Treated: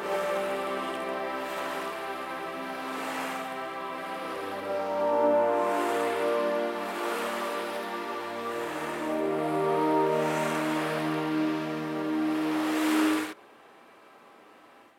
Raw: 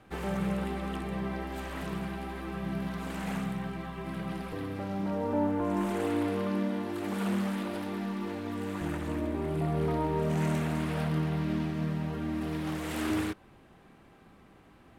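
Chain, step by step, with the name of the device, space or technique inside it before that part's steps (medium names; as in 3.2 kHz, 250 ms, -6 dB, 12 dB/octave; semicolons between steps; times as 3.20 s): ghost voice (reverse; reverberation RT60 1.5 s, pre-delay 48 ms, DRR -5.5 dB; reverse; high-pass 470 Hz 12 dB/octave); trim +1 dB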